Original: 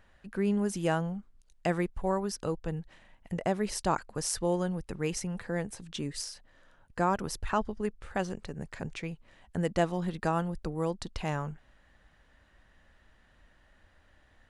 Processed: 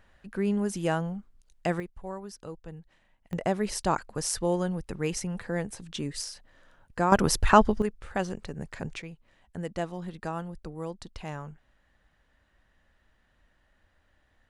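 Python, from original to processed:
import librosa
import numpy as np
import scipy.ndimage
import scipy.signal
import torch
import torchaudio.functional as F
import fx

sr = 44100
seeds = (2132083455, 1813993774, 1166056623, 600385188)

y = fx.gain(x, sr, db=fx.steps((0.0, 1.0), (1.8, -8.5), (3.33, 2.0), (7.12, 11.5), (7.82, 2.0), (9.02, -5.0)))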